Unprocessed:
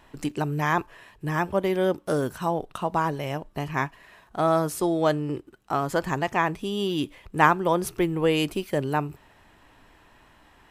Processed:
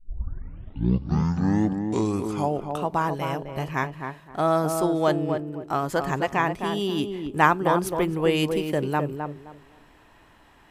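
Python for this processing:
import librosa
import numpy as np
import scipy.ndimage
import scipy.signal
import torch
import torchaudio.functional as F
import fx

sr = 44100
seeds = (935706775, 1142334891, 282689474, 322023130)

y = fx.tape_start_head(x, sr, length_s=2.85)
y = fx.echo_tape(y, sr, ms=261, feedback_pct=27, wet_db=-4, lp_hz=1100.0, drive_db=6.0, wow_cents=5)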